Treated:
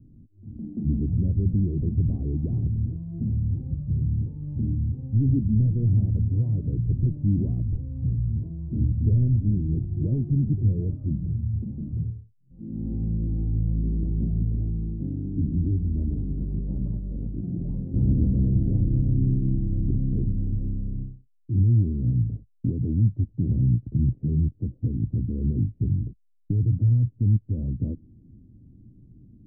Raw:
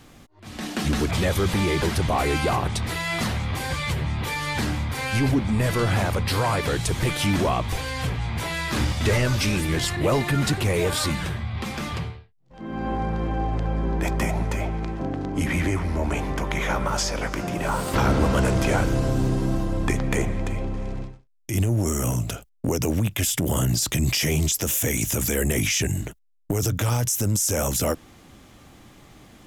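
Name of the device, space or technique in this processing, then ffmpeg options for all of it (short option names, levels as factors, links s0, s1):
the neighbour's flat through the wall: -af "lowpass=f=270:w=0.5412,lowpass=f=270:w=1.3066,equalizer=f=110:t=o:w=0.47:g=5"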